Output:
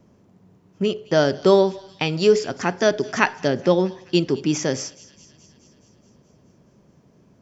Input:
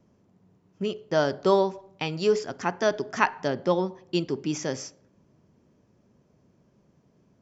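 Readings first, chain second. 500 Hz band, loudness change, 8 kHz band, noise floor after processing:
+6.5 dB, +6.0 dB, n/a, -57 dBFS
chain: dynamic EQ 1000 Hz, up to -7 dB, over -38 dBFS, Q 1.5; on a send: thin delay 0.212 s, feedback 66%, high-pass 2600 Hz, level -18 dB; on the sum: gain +7.5 dB

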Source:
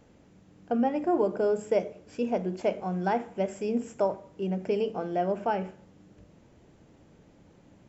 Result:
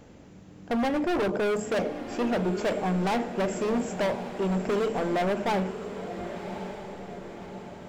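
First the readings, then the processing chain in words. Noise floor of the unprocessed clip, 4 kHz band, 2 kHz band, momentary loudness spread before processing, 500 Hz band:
-58 dBFS, +10.0 dB, +8.0 dB, 7 LU, +0.5 dB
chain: hard clip -31.5 dBFS, distortion -5 dB; diffused feedback echo 1.117 s, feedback 53%, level -10 dB; gain +7.5 dB

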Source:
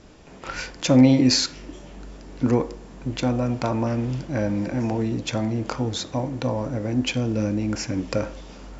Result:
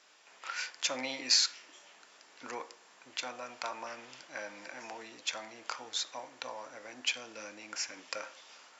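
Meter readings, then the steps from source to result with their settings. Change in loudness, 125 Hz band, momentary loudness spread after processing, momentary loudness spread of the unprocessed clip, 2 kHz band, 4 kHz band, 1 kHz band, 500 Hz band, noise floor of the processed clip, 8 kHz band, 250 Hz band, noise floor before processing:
-12.0 dB, under -40 dB, 15 LU, 17 LU, -4.5 dB, -4.0 dB, -10.0 dB, -18.5 dB, -60 dBFS, n/a, -30.5 dB, -43 dBFS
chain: HPF 1200 Hz 12 dB/oct; gain -4 dB

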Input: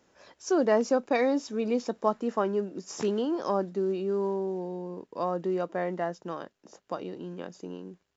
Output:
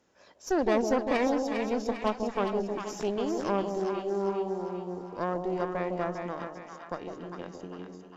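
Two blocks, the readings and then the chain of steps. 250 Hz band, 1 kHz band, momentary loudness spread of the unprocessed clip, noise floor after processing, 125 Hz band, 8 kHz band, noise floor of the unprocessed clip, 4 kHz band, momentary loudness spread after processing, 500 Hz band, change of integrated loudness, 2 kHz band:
-1.0 dB, +0.5 dB, 15 LU, -56 dBFS, 0.0 dB, n/a, -74 dBFS, +0.5 dB, 15 LU, -1.5 dB, -1.0 dB, +1.0 dB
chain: added harmonics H 6 -17 dB, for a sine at -11 dBFS; split-band echo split 840 Hz, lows 0.156 s, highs 0.401 s, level -5 dB; gain -3.5 dB

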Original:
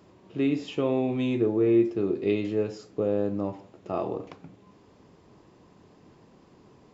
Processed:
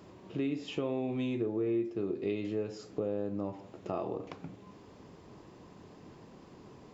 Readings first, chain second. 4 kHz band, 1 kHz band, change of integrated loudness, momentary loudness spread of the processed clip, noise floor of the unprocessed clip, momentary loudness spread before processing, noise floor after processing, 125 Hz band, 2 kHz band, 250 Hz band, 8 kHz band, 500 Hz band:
-4.5 dB, -6.0 dB, -8.5 dB, 21 LU, -57 dBFS, 12 LU, -55 dBFS, -7.0 dB, -7.0 dB, -8.0 dB, n/a, -8.0 dB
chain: compressor 2.5:1, threshold -38 dBFS, peak gain reduction 14 dB; gain +2.5 dB

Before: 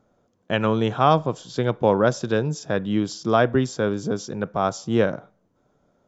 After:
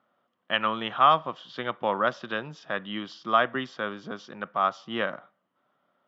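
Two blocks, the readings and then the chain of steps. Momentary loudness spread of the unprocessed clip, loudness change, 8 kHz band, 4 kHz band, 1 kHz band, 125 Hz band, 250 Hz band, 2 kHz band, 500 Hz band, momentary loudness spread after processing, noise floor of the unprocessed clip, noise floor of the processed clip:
8 LU, -4.5 dB, n/a, +1.0 dB, -0.5 dB, -18.5 dB, -12.5 dB, 0.0 dB, -9.5 dB, 15 LU, -67 dBFS, -77 dBFS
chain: speaker cabinet 280–4200 Hz, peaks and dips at 310 Hz -5 dB, 440 Hz -10 dB, 1200 Hz +10 dB, 1900 Hz +8 dB, 3000 Hz +10 dB; gain -5.5 dB

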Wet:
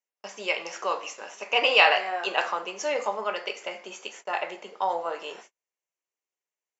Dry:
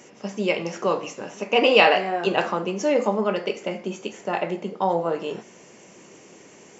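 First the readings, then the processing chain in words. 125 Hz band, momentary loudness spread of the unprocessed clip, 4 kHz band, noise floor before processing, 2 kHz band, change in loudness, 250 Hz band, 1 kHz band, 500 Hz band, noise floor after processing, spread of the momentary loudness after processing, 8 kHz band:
under -20 dB, 16 LU, 0.0 dB, -49 dBFS, 0.0 dB, -3.0 dB, -17.5 dB, -2.5 dB, -8.0 dB, under -85 dBFS, 19 LU, n/a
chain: gate -40 dBFS, range -43 dB; HPF 790 Hz 12 dB/oct

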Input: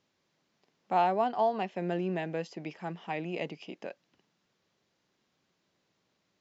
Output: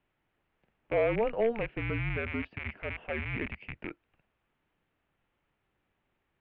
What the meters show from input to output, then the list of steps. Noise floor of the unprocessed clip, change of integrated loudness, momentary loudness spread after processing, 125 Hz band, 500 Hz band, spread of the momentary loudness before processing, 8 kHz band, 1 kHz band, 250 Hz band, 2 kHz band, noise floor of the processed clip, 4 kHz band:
-78 dBFS, -0.5 dB, 12 LU, +4.0 dB, +1.5 dB, 15 LU, n/a, -11.0 dB, -1.5 dB, +6.5 dB, -80 dBFS, -2.5 dB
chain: rattling part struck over -47 dBFS, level -26 dBFS; hard clip -21 dBFS, distortion -20 dB; mistuned SSB -230 Hz 190–3100 Hz

